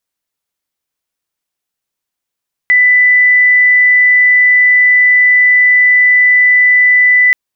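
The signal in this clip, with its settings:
tone sine 1,990 Hz −4.5 dBFS 4.63 s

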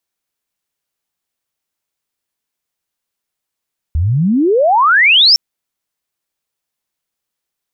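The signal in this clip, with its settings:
glide logarithmic 72 Hz → 5,600 Hz −11 dBFS → −4.5 dBFS 1.41 s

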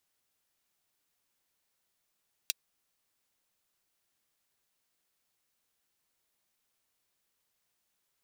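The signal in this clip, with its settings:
closed synth hi-hat, high-pass 3,200 Hz, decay 0.03 s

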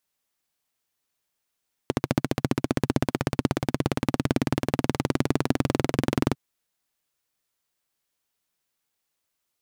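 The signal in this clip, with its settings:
pulse-train model of a single-cylinder engine, changing speed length 4.45 s, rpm 1,700, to 2,600, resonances 140/250 Hz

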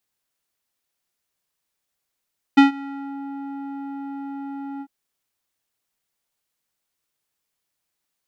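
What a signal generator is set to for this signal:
subtractive voice square C#4 12 dB per octave, low-pass 990 Hz, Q 1.1, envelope 1.5 octaves, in 0.60 s, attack 12 ms, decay 0.13 s, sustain −23.5 dB, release 0.06 s, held 2.24 s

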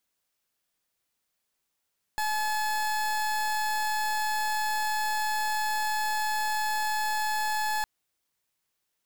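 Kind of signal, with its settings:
pulse wave 857 Hz, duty 29% −28 dBFS 5.66 s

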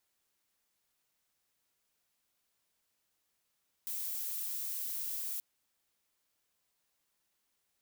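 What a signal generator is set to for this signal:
noise violet, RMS −38 dBFS 1.53 s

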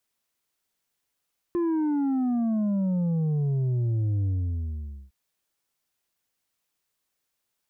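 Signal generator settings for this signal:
bass drop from 350 Hz, over 3.56 s, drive 5 dB, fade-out 0.86 s, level −23 dB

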